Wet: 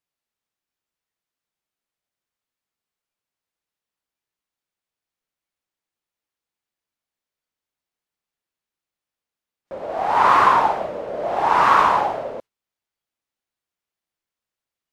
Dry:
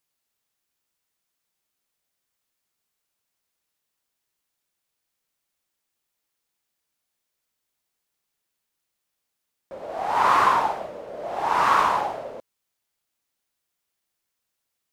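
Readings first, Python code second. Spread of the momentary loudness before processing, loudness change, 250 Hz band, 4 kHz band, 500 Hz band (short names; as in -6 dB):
18 LU, +4.0 dB, +5.5 dB, +2.0 dB, +5.5 dB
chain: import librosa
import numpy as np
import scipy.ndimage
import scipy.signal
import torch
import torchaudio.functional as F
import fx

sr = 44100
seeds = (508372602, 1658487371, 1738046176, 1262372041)

p1 = fx.noise_reduce_blind(x, sr, reduce_db=10)
p2 = fx.high_shelf(p1, sr, hz=5300.0, db=-9.5)
p3 = fx.rider(p2, sr, range_db=5, speed_s=0.5)
y = p2 + F.gain(torch.from_numpy(p3), -1.0).numpy()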